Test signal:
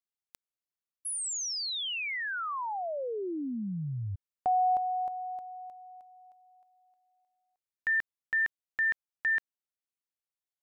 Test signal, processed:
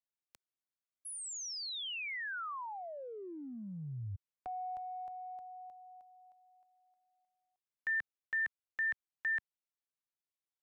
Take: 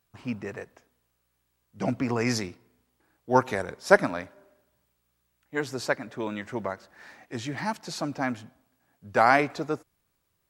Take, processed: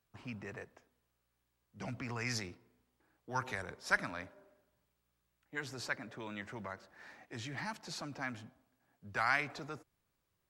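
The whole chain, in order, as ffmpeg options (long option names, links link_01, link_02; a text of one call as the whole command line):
ffmpeg -i in.wav -filter_complex "[0:a]highshelf=frequency=6700:gain=-5.5,acrossover=split=120|1200[link_01][link_02][link_03];[link_02]acompressor=threshold=-39dB:ratio=6:attack=1.6:release=30:knee=6:detection=peak[link_04];[link_01][link_04][link_03]amix=inputs=3:normalize=0,volume=-5.5dB" out.wav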